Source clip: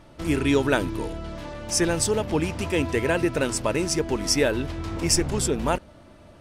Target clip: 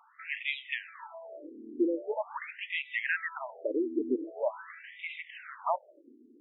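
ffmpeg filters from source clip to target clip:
-af "highpass=150,equalizer=f=230:t=q:w=4:g=10,equalizer=f=470:t=q:w=4:g=-3,equalizer=f=1.1k:t=q:w=4:g=3,equalizer=f=1.9k:t=q:w=4:g=6,lowpass=f=3.7k:w=0.5412,lowpass=f=3.7k:w=1.3066,afftfilt=real='re*between(b*sr/1024,320*pow(2800/320,0.5+0.5*sin(2*PI*0.44*pts/sr))/1.41,320*pow(2800/320,0.5+0.5*sin(2*PI*0.44*pts/sr))*1.41)':imag='im*between(b*sr/1024,320*pow(2800/320,0.5+0.5*sin(2*PI*0.44*pts/sr))/1.41,320*pow(2800/320,0.5+0.5*sin(2*PI*0.44*pts/sr))*1.41)':win_size=1024:overlap=0.75,volume=-3dB"

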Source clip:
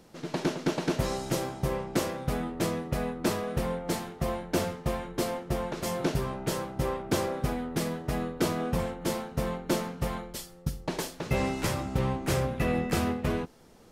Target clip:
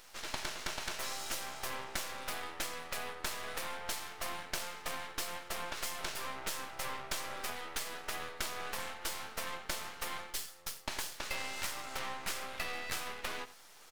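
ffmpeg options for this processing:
-filter_complex "[0:a]highpass=1.2k,asplit=2[a][b];[b]aecho=0:1:87:0.119[c];[a][c]amix=inputs=2:normalize=0,aeval=exprs='max(val(0),0)':c=same,acompressor=threshold=-45dB:ratio=6,volume=11dB"

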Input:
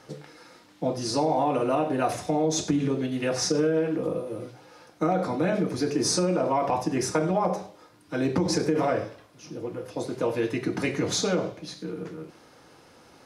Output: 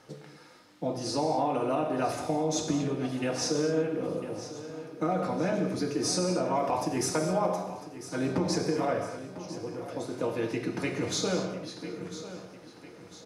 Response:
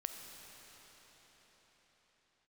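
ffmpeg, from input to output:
-filter_complex "[0:a]asettb=1/sr,asplit=3[a][b][c];[a]atrim=end=6.554[d];[b]atrim=start=6.55:end=7.63,asetpts=PTS-STARTPTS,afade=t=in:d=0.004:c=qsin,afade=t=out:st=1.076:d=0.004:c=qsin,highshelf=f=6.2k:g=8[e];[c]atrim=start=7.626[f];[d][e]acrossfade=d=0.004:c1=hsin:c2=qsin[g];[g][f]acrossfade=d=0.004:c1=qsin:c2=hsin,aecho=1:1:999|1998|2997|3996|4995:0.2|0.0998|0.0499|0.0249|0.0125[h];[1:a]atrim=start_sample=2205,afade=t=out:st=0.28:d=0.01,atrim=end_sample=12789,asetrate=41895,aresample=44100[i];[h][i]afir=irnorm=-1:irlink=0,volume=-2dB"

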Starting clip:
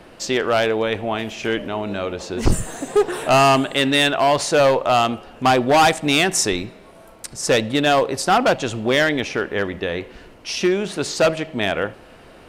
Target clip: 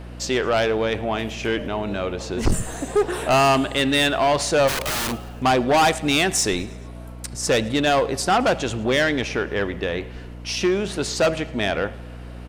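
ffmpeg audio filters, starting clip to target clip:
-filter_complex "[0:a]asplit=3[a][b][c];[a]afade=t=out:st=4.67:d=0.02[d];[b]aeval=exprs='(mod(9.44*val(0)+1,2)-1)/9.44':c=same,afade=t=in:st=4.67:d=0.02,afade=t=out:st=5.11:d=0.02[e];[c]afade=t=in:st=5.11:d=0.02[f];[d][e][f]amix=inputs=3:normalize=0,aeval=exprs='val(0)+0.0178*(sin(2*PI*60*n/s)+sin(2*PI*2*60*n/s)/2+sin(2*PI*3*60*n/s)/3+sin(2*PI*4*60*n/s)/4+sin(2*PI*5*60*n/s)/5)':c=same,aeval=exprs='0.473*(cos(1*acos(clip(val(0)/0.473,-1,1)))-cos(1*PI/2))+0.0335*(cos(5*acos(clip(val(0)/0.473,-1,1)))-cos(5*PI/2))':c=same,aecho=1:1:108|216|324|432:0.075|0.0412|0.0227|0.0125,volume=-3dB"

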